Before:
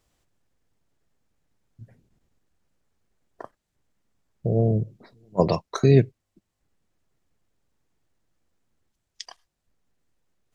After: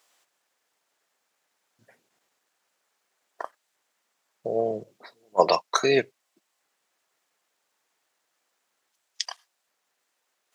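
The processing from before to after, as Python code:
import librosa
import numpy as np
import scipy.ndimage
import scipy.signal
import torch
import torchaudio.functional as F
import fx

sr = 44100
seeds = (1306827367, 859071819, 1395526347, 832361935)

y = scipy.signal.sosfilt(scipy.signal.butter(2, 740.0, 'highpass', fs=sr, output='sos'), x)
y = F.gain(torch.from_numpy(y), 8.5).numpy()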